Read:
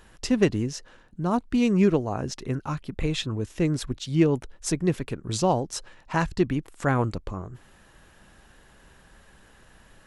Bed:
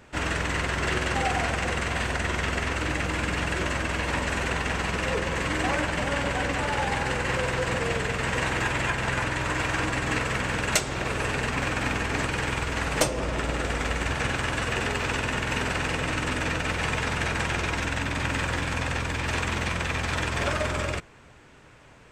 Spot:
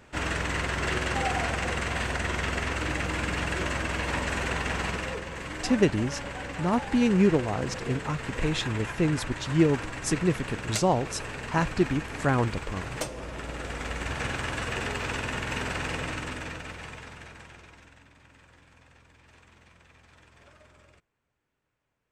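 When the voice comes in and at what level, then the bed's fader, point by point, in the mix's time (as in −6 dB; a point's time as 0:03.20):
5.40 s, −1.0 dB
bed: 0:04.88 −2 dB
0:05.25 −9.5 dB
0:13.34 −9.5 dB
0:14.22 −4 dB
0:15.99 −4 dB
0:18.19 −29 dB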